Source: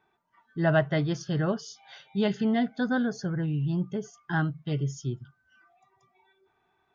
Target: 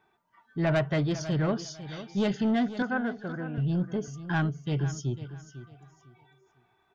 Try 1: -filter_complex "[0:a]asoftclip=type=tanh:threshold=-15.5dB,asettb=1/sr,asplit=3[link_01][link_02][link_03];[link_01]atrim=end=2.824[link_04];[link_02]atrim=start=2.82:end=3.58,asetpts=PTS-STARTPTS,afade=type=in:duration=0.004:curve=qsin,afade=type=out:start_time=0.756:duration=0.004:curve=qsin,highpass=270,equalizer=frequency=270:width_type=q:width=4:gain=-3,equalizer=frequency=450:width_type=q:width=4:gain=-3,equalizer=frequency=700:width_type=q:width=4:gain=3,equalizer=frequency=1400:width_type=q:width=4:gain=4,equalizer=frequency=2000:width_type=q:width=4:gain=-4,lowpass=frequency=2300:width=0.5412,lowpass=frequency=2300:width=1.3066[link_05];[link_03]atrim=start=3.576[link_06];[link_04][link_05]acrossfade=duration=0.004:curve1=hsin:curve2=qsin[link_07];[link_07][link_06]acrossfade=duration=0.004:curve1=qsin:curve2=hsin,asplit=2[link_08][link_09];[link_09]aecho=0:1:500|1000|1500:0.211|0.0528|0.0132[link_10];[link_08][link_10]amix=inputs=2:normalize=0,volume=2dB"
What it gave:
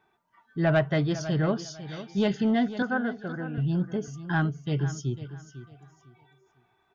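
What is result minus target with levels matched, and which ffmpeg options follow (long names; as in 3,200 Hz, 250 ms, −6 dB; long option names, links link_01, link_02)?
soft clipping: distortion −7 dB
-filter_complex "[0:a]asoftclip=type=tanh:threshold=-22dB,asettb=1/sr,asplit=3[link_01][link_02][link_03];[link_01]atrim=end=2.824[link_04];[link_02]atrim=start=2.82:end=3.58,asetpts=PTS-STARTPTS,afade=type=in:duration=0.004:curve=qsin,afade=type=out:start_time=0.756:duration=0.004:curve=qsin,highpass=270,equalizer=frequency=270:width_type=q:width=4:gain=-3,equalizer=frequency=450:width_type=q:width=4:gain=-3,equalizer=frequency=700:width_type=q:width=4:gain=3,equalizer=frequency=1400:width_type=q:width=4:gain=4,equalizer=frequency=2000:width_type=q:width=4:gain=-4,lowpass=frequency=2300:width=0.5412,lowpass=frequency=2300:width=1.3066[link_05];[link_03]atrim=start=3.576[link_06];[link_04][link_05]acrossfade=duration=0.004:curve1=hsin:curve2=qsin[link_07];[link_07][link_06]acrossfade=duration=0.004:curve1=qsin:curve2=hsin,asplit=2[link_08][link_09];[link_09]aecho=0:1:500|1000|1500:0.211|0.0528|0.0132[link_10];[link_08][link_10]amix=inputs=2:normalize=0,volume=2dB"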